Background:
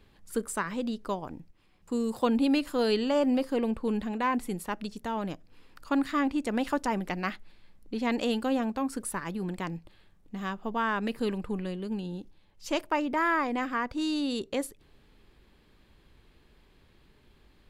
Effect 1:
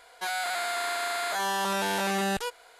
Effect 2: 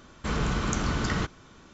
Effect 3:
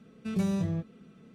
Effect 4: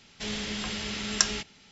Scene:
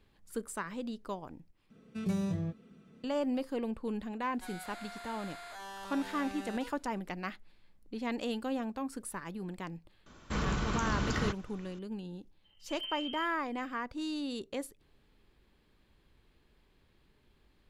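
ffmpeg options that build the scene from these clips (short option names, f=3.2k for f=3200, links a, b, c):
-filter_complex "[3:a]asplit=2[a][b];[0:a]volume=-7dB[c];[1:a]highshelf=f=8.6k:g=-6.5[d];[2:a]alimiter=limit=-18dB:level=0:latency=1:release=48[e];[b]lowpass=f=2.8k:t=q:w=0.5098,lowpass=f=2.8k:t=q:w=0.6013,lowpass=f=2.8k:t=q:w=0.9,lowpass=f=2.8k:t=q:w=2.563,afreqshift=-3300[f];[c]asplit=2[g][h];[g]atrim=end=1.704[i];[a]atrim=end=1.34,asetpts=PTS-STARTPTS,volume=-4dB[j];[h]atrim=start=3.036[k];[d]atrim=end=2.79,asetpts=PTS-STARTPTS,volume=-16.5dB,afade=t=in:d=0.004:c=hsin,afade=t=out:st=2.786:d=0.004:c=hsin,adelay=4200[l];[e]atrim=end=1.73,asetpts=PTS-STARTPTS,volume=-4.5dB,afade=t=in:d=0.004:c=hsin,afade=t=out:st=1.726:d=0.004:c=hsin,adelay=10060[m];[f]atrim=end=1.34,asetpts=PTS-STARTPTS,volume=-14dB,afade=t=in:d=0.004:c=hsin,afade=t=out:st=1.336:d=0.004:c=hsin,adelay=12440[n];[i][j]acrossfade=d=0.004:c1=hsin:c2=hsin[o];[o][k]acrossfade=d=0.004:c1=hsin:c2=hsin[p];[p][l][m][n]amix=inputs=4:normalize=0"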